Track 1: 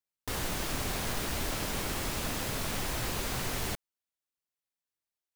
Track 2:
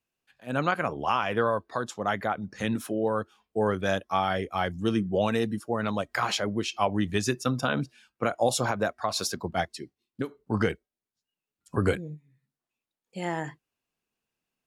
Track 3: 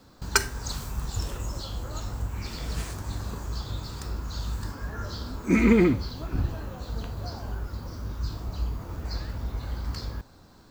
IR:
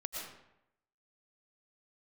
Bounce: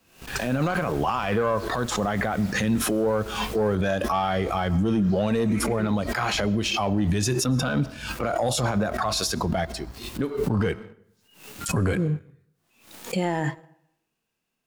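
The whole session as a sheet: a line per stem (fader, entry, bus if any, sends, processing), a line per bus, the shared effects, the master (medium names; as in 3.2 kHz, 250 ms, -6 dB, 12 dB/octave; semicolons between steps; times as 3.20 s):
-6.5 dB, 0.00 s, no send, auto duck -8 dB, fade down 1.05 s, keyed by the second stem
+1.0 dB, 0.00 s, send -21.5 dB, harmonic-percussive split harmonic +9 dB; swell ahead of each attack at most 89 dB/s
-11.5 dB, 0.00 s, no send, none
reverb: on, RT60 0.85 s, pre-delay 75 ms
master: waveshaping leveller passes 1; peak limiter -16 dBFS, peak gain reduction 12 dB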